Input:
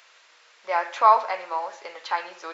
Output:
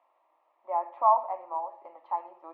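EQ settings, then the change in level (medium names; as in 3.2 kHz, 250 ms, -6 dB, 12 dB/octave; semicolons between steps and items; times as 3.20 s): high-pass 180 Hz; four-pole ladder low-pass 1.4 kHz, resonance 30%; static phaser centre 300 Hz, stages 8; +1.5 dB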